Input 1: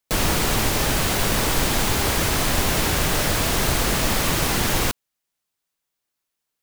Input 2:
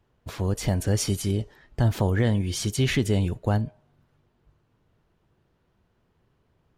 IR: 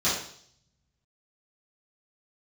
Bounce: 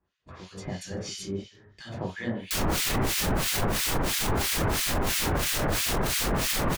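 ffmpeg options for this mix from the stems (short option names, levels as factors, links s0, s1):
-filter_complex "[0:a]adelay=2400,volume=1.33[s0];[1:a]lowpass=5600,tiltshelf=f=1300:g=-5.5,volume=0.398,asplit=2[s1][s2];[s2]volume=0.447[s3];[2:a]atrim=start_sample=2205[s4];[s3][s4]afir=irnorm=-1:irlink=0[s5];[s0][s1][s5]amix=inputs=3:normalize=0,acrossover=split=1600[s6][s7];[s6]aeval=exprs='val(0)*(1-1/2+1/2*cos(2*PI*3*n/s))':c=same[s8];[s7]aeval=exprs='val(0)*(1-1/2-1/2*cos(2*PI*3*n/s))':c=same[s9];[s8][s9]amix=inputs=2:normalize=0,alimiter=limit=0.126:level=0:latency=1:release=14"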